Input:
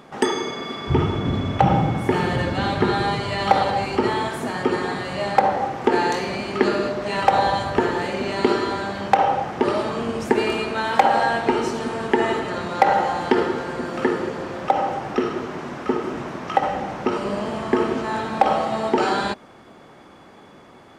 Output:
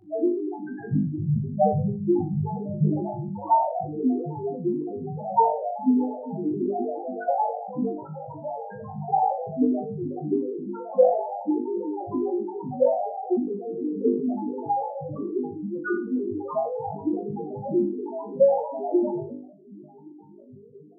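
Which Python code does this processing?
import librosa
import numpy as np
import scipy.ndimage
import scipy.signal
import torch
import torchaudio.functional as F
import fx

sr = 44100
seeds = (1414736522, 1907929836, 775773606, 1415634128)

p1 = fx.dynamic_eq(x, sr, hz=390.0, q=3.0, threshold_db=-36.0, ratio=4.0, max_db=-6, at=(14.77, 15.95))
p2 = fx.over_compress(p1, sr, threshold_db=-30.0, ratio=-1.0)
p3 = p1 + F.gain(torch.from_numpy(p2), -0.5).numpy()
p4 = fx.ring_mod(p3, sr, carrier_hz=400.0, at=(7.94, 9.05), fade=0.02)
p5 = fx.noise_vocoder(p4, sr, seeds[0], bands=6)
p6 = fx.transient(p5, sr, attack_db=11, sustain_db=-6)
p7 = fx.spec_topn(p6, sr, count=1)
p8 = p7 + fx.room_flutter(p7, sr, wall_m=3.4, rt60_s=0.36, dry=0)
y = fx.sustainer(p8, sr, db_per_s=82.0)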